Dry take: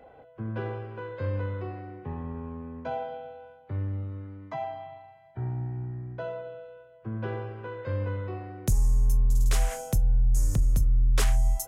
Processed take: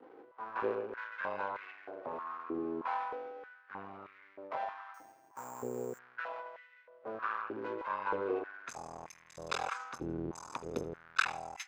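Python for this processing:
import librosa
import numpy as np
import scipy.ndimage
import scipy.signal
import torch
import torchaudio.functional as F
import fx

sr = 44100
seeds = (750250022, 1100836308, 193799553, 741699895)

p1 = fx.spec_quant(x, sr, step_db=15)
p2 = fx.env_lowpass(p1, sr, base_hz=1300.0, full_db=-21.5)
p3 = p2 + 0.9 * np.pad(p2, (int(0.8 * sr / 1000.0), 0))[:len(p2)]
p4 = np.maximum(p3, 0.0)
p5 = fx.air_absorb(p4, sr, metres=150.0)
p6 = p5 + fx.echo_feedback(p5, sr, ms=80, feedback_pct=35, wet_db=-19.5, dry=0)
p7 = fx.resample_bad(p6, sr, factor=6, down='none', up='hold', at=(4.94, 5.99))
p8 = fx.filter_held_highpass(p7, sr, hz=3.2, low_hz=340.0, high_hz=2000.0)
y = p8 * librosa.db_to_amplitude(1.0)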